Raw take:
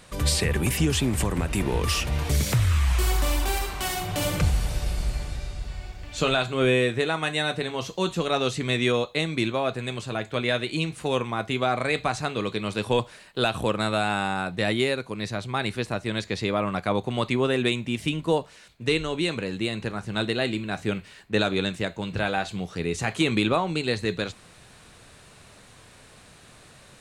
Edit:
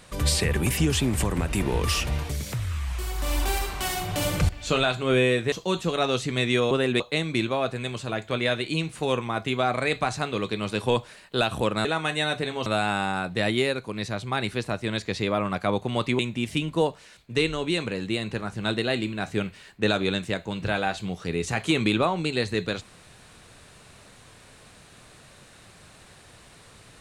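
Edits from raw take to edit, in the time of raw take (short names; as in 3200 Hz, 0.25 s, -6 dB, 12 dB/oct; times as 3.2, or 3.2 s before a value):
2.1–3.4 dip -8 dB, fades 0.25 s
4.49–6 cut
7.03–7.84 move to 13.88
17.41–17.7 move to 9.03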